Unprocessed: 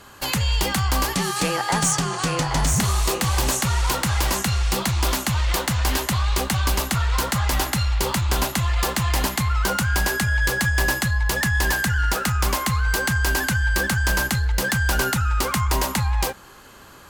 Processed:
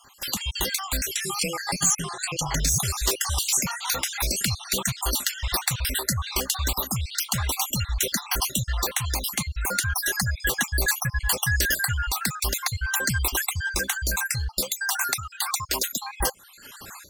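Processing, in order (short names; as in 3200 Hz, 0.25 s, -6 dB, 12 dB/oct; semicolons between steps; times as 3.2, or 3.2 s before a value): random spectral dropouts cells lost 52%; 14.61–16.02 HPF 270 Hz 6 dB/oct; reverb removal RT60 1 s; high shelf 2400 Hz +10 dB; AGC gain up to 15 dB; requantised 12-bit, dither none; gain -8 dB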